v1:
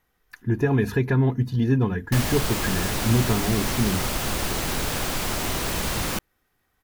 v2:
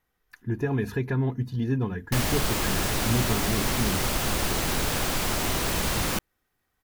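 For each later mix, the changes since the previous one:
speech −5.5 dB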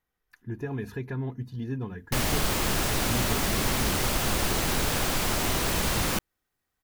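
speech −6.5 dB

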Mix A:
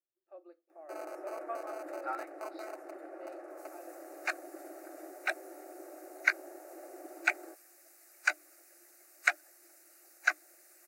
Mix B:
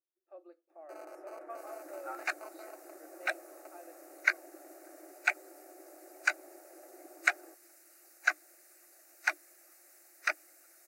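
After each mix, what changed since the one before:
first sound −5.5 dB
second sound: entry −2.00 s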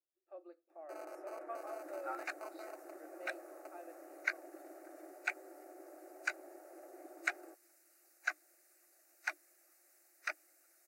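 second sound −8.5 dB

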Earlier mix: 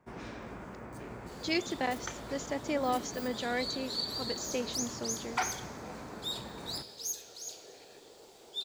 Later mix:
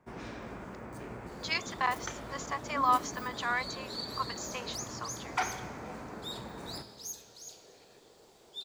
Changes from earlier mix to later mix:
speech: add high-pass with resonance 1,100 Hz, resonance Q 10
first sound: send +6.0 dB
second sound −5.0 dB

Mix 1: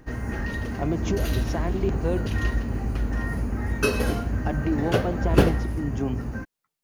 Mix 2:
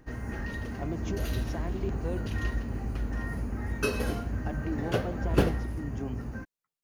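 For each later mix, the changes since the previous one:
speech −9.0 dB
background −6.0 dB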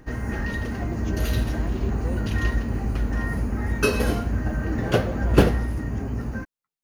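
background +6.0 dB
reverb: on, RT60 0.30 s

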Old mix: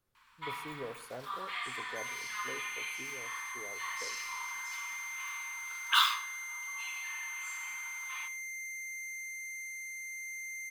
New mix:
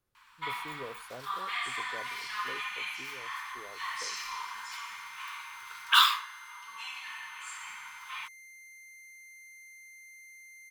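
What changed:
first sound +6.0 dB
second sound −4.5 dB
reverb: off

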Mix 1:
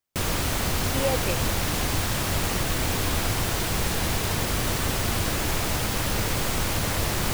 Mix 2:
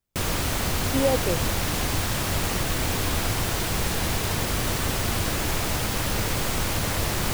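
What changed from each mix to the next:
speech: add spectral tilt −4 dB per octave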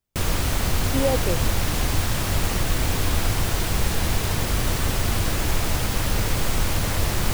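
background: add low-shelf EQ 75 Hz +9 dB

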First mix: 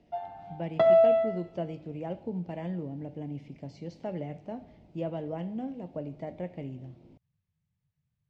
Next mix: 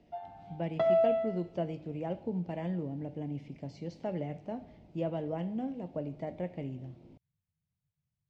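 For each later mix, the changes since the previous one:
background −6.0 dB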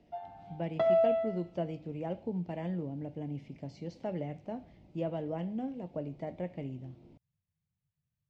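reverb: off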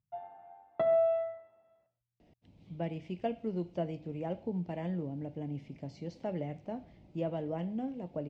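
speech: entry +2.20 s
background: add high-frequency loss of the air 350 metres

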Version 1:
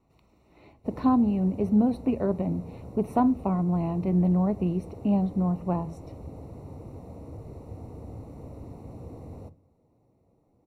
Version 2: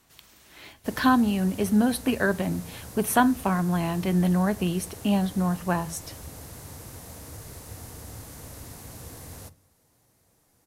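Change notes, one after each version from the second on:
background: add parametric band 350 Hz −5 dB 2.5 octaves
master: remove moving average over 27 samples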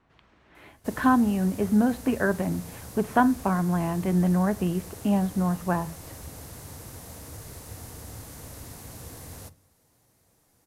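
speech: add low-pass filter 1,800 Hz 12 dB per octave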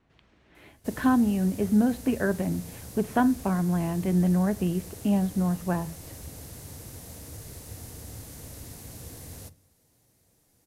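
master: add parametric band 1,100 Hz −6.5 dB 1.4 octaves

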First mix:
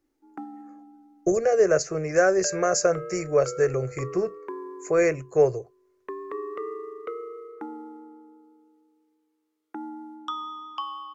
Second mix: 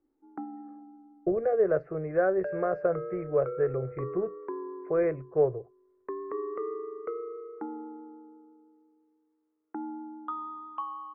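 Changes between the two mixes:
speech −4.5 dB
master: add Bessel low-pass filter 1,200 Hz, order 6

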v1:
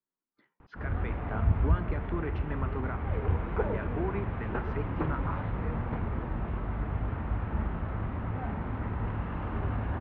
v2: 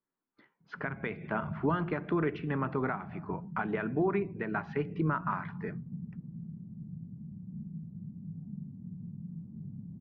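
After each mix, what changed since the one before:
speech +5.5 dB
background: add flat-topped band-pass 170 Hz, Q 2.7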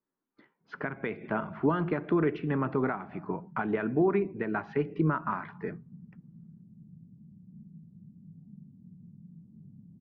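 background −11.0 dB
master: add parametric band 310 Hz +4.5 dB 2.3 octaves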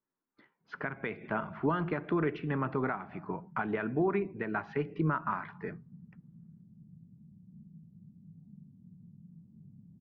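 master: add parametric band 310 Hz −4.5 dB 2.3 octaves

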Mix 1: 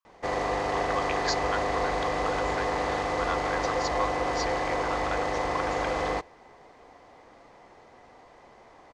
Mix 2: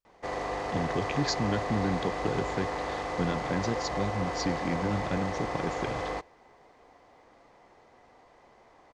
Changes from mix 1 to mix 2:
speech: remove high-pass with resonance 1,100 Hz, resonance Q 8.1
background −5.0 dB

